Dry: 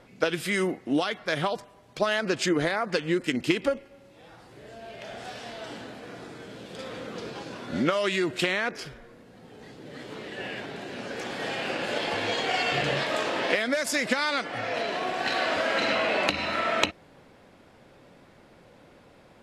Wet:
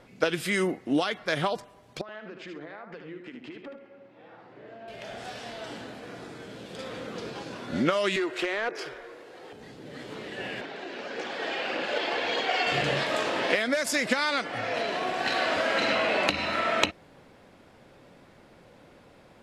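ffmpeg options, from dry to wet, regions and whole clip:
-filter_complex "[0:a]asettb=1/sr,asplit=3[a][b][c];[a]atrim=end=2.014[d];[b]atrim=start=2.01:end=4.88,asetpts=PTS-STARTPTS,afade=t=in:d=0.004:c=qsin,afade=t=out:st=2.866:d=0.004:c=qsin,highpass=190,lowpass=2.2k,acompressor=threshold=-41dB:ratio=5:attack=3.2:release=140:knee=1:detection=peak,aecho=1:1:75|133:0.473|0.106,atrim=end_sample=126567[e];[c]atrim=start=4.876[f];[d][e]acrossfade=d=0.004:c1=hsin:c2=qsin[g];[g][f]acrossfade=d=0.004:c1=qsin:c2=hsin,asettb=1/sr,asplit=3[h][i][j];[h]atrim=end=8.164[k];[i]atrim=start=8.16:end=9.53,asetpts=PTS-STARTPTS,afade=t=in:d=0.004:c=qsin,afade=t=out:st=1.366:d=0.004:c=qsin,lowshelf=f=280:t=q:w=3:g=-6.5,acrossover=split=270|850|1900[l][m][n][o];[l]acompressor=threshold=-43dB:ratio=3[p];[m]acompressor=threshold=-33dB:ratio=3[q];[n]acompressor=threshold=-40dB:ratio=3[r];[o]acompressor=threshold=-46dB:ratio=3[s];[p][q][r][s]amix=inputs=4:normalize=0,asplit=2[t][u];[u]highpass=f=720:p=1,volume=13dB,asoftclip=type=tanh:threshold=-19dB[v];[t][v]amix=inputs=2:normalize=0,lowpass=f=4.9k:p=1,volume=-6dB[w];[j]atrim=start=9.526[x];[k][w]acrossfade=d=0.004:c1=hsin:c2=qsin[y];[y][x]acrossfade=d=0.004:c1=qsin:c2=hsin,asettb=1/sr,asplit=3[z][aa][ab];[z]atrim=end=10.614[ac];[aa]atrim=start=10.61:end=12.67,asetpts=PTS-STARTPTS,afade=t=in:d=0.004:c=qsin,afade=t=out:st=2.056:d=0.004:c=qsin,highpass=290,lowpass=5.2k,aphaser=in_gain=1:out_gain=1:delay=3.3:decay=0.33:speed=1.7:type=triangular[ad];[ab]atrim=start=12.666[ae];[ac][ad]acrossfade=d=0.004:c1=hsin:c2=qsin[af];[af][ae]acrossfade=d=0.004:c1=qsin:c2=hsin"

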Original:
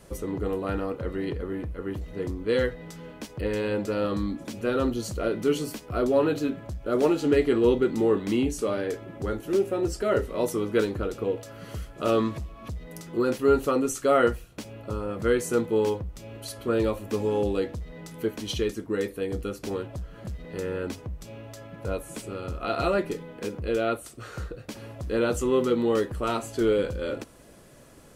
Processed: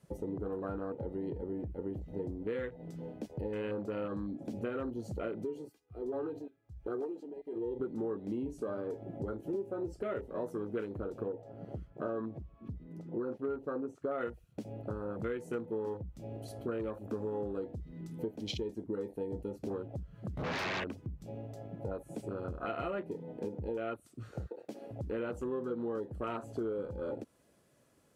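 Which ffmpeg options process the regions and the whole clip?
-filter_complex "[0:a]asettb=1/sr,asplit=3[a][b][c];[a]atrim=end=5.444[d];[b]atrim=start=5.44:end=7.8,asetpts=PTS-STARTPTS,afade=t=in:d=0.004:c=qsin,afade=t=out:st=2.356:d=0.004:c=qsin,aecho=1:1:2.5:0.74,atrim=end_sample=104076,acompressor=threshold=-27dB:ratio=2.5:attack=3.2:release=140:knee=1:detection=peak,aeval=exprs='val(0)*pow(10,-19*(0.5-0.5*cos(2*PI*1.3*n/s))/20)':c=same[e];[c]atrim=start=7.796[f];[d][e]acrossfade=d=0.004:c1=hsin:c2=qsin[g];[g][f]acrossfade=d=0.004:c1=qsin:c2=hsin,asettb=1/sr,asplit=3[h][i][j];[h]atrim=end=11.284[k];[i]atrim=start=11.28:end=14.21,asetpts=PTS-STARTPTS,afade=t=in:d=0.004:c=qsin,afade=t=out:st=2.926:d=0.004:c=qsin,lowpass=f=1.3k:p=1,lowshelf=f=120:g=-6[l];[j]atrim=start=14.206[m];[k][l]acrossfade=d=0.004:c1=hsin:c2=qsin[n];[n][m]acrossfade=d=0.004:c1=qsin:c2=hsin,asettb=1/sr,asplit=3[o][p][q];[o]atrim=end=20.374[r];[p]atrim=start=20.37:end=20.84,asetpts=PTS-STARTPTS,afade=t=in:d=0.004:c=qsin,afade=t=out:st=0.466:d=0.004:c=qsin,acrossover=split=400|810[s][t][u];[s]acompressor=threshold=-37dB:ratio=4[v];[t]acompressor=threshold=-41dB:ratio=4[w];[u]acompressor=threshold=-46dB:ratio=4[x];[v][w][x]amix=inputs=3:normalize=0,aeval=exprs='0.0668*sin(PI/2*8.91*val(0)/0.0668)':c=same[y];[q]atrim=start=20.836[z];[r][y]acrossfade=d=0.004:c1=hsin:c2=qsin[aa];[aa][z]acrossfade=d=0.004:c1=qsin:c2=hsin,asettb=1/sr,asplit=3[ab][ac][ad];[ab]atrim=end=24.464[ae];[ac]atrim=start=24.46:end=24.91,asetpts=PTS-STARTPTS,afade=t=in:d=0.004:c=qsin,afade=t=out:st=0.446:d=0.004:c=qsin,highpass=290,bandreject=f=60:t=h:w=6,bandreject=f=120:t=h:w=6,bandreject=f=180:t=h:w=6,bandreject=f=240:t=h:w=6,bandreject=f=300:t=h:w=6,bandreject=f=360:t=h:w=6,bandreject=f=420:t=h:w=6,bandreject=f=480:t=h:w=6[af];[ad]atrim=start=24.906[ag];[ae][af]acrossfade=d=0.004:c1=hsin:c2=qsin[ah];[ah][ag]acrossfade=d=0.004:c1=qsin:c2=hsin,afwtdn=0.0178,acompressor=threshold=-35dB:ratio=5,highpass=76"

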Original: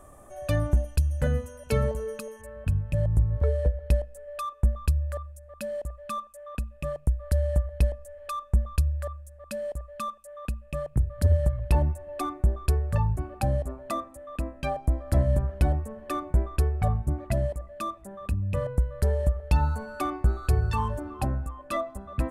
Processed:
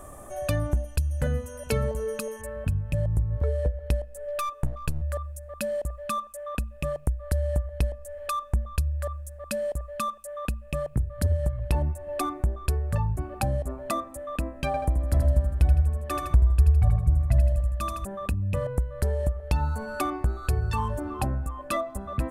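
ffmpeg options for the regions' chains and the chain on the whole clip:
-filter_complex "[0:a]asettb=1/sr,asplit=3[a][b][c];[a]atrim=end=4.204[d];[b]atrim=start=4.2:end=5.02,asetpts=PTS-STARTPTS,afade=t=in:d=0.004:c=qsin,afade=t=out:st=0.816:d=0.004:c=qsin,aeval=exprs='clip(val(0),-1,0.0188)':c=same,aecho=1:1:6.6:0.37,atrim=end_sample=36162[e];[c]atrim=start=5.016[f];[d][e]acrossfade=d=0.004:c1=hsin:c2=qsin[g];[g][f]acrossfade=d=0.004:c1=qsin:c2=hsin,asettb=1/sr,asplit=3[h][i][j];[h]atrim=end=14.664[k];[i]atrim=start=14.66:end=18.05,asetpts=PTS-STARTPTS,afade=t=in:d=0.004:c=qsin,afade=t=out:st=3.386:d=0.004:c=qsin,highpass=41,asubboost=boost=12:cutoff=96,aecho=1:1:80|160|240|320|400:0.631|0.271|0.117|0.0502|0.0216,atrim=end_sample=149499[l];[j]atrim=start=18.046[m];[k][l]acrossfade=d=0.004:c1=hsin:c2=qsin[n];[n][m]acrossfade=d=0.004:c1=qsin:c2=hsin,highshelf=f=7.4k:g=4,acompressor=threshold=-35dB:ratio=2,volume=6.5dB"

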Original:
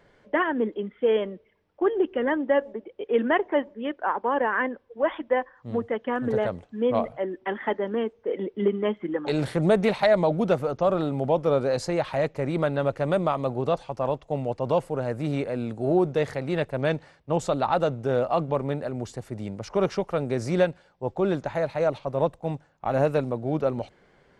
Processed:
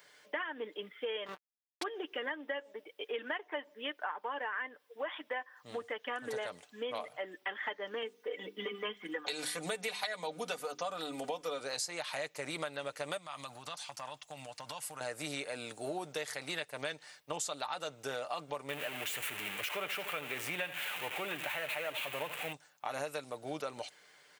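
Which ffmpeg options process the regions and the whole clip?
-filter_complex "[0:a]asettb=1/sr,asplit=3[a][b][c];[a]atrim=end=1.264[d];[b]atrim=start=1.26:end=1.83,asetpts=PTS-STARTPTS,afade=t=in:d=0.004:c=qsin,afade=t=out:st=0.566:d=0.004:c=qsin,asplit=2[e][f];[f]adelay=26,volume=-2.5dB[g];[e][g]amix=inputs=2:normalize=0,atrim=end_sample=25137,acrusher=bits=4:mix=0:aa=0.5[h];[c]atrim=start=1.826[i];[d][h]acrossfade=d=0.004:c1=hsin:c2=qsin[j];[j][i]acrossfade=d=0.004:c1=qsin:c2=hsin,asettb=1/sr,asplit=3[k][l][m];[k]atrim=end=8.024[n];[l]atrim=start=8.02:end=11.61,asetpts=PTS-STARTPTS,afade=t=in:d=0.004:c=qsin,afade=t=out:st=3.586:d=0.004:c=qsin,bandreject=f=50:t=h:w=6,bandreject=f=100:t=h:w=6,bandreject=f=150:t=h:w=6,bandreject=f=200:t=h:w=6,bandreject=f=250:t=h:w=6,bandreject=f=300:t=h:w=6,bandreject=f=350:t=h:w=6,bandreject=f=400:t=h:w=6,aecho=1:1:4.1:0.63,atrim=end_sample=158319[o];[m]atrim=start=11.606[p];[n][o]acrossfade=d=0.004:c1=hsin:c2=qsin[q];[q][p]acrossfade=d=0.004:c1=qsin:c2=hsin,asettb=1/sr,asplit=3[r][s][t];[r]atrim=end=13.174[u];[s]atrim=start=13.17:end=15.01,asetpts=PTS-STARTPTS,afade=t=in:d=0.004:c=qsin,afade=t=out:st=1.836:d=0.004:c=qsin,acompressor=threshold=-27dB:ratio=10:attack=3.2:release=140:knee=1:detection=peak,equalizer=f=420:w=1.4:g=-13.5[v];[t]atrim=start=15.006[w];[u][v]acrossfade=d=0.004:c1=hsin:c2=qsin[x];[x][w]acrossfade=d=0.004:c1=qsin:c2=hsin,asettb=1/sr,asplit=3[y][z][aa];[y]atrim=end=18.694[ab];[z]atrim=start=18.69:end=22.53,asetpts=PTS-STARTPTS,afade=t=in:d=0.004:c=qsin,afade=t=out:st=3.836:d=0.004:c=qsin,aeval=exprs='val(0)+0.5*0.0355*sgn(val(0))':c=same,highshelf=f=3.7k:t=q:w=3:g=-11.5,aecho=1:1:78:0.2,atrim=end_sample=169344[ac];[aa]atrim=start=22.526[ad];[ab][ac]acrossfade=d=0.004:c1=hsin:c2=qsin[ae];[ae][ad]acrossfade=d=0.004:c1=qsin:c2=hsin,aderivative,aecho=1:1:6.7:0.39,acompressor=threshold=-48dB:ratio=6,volume=13dB"

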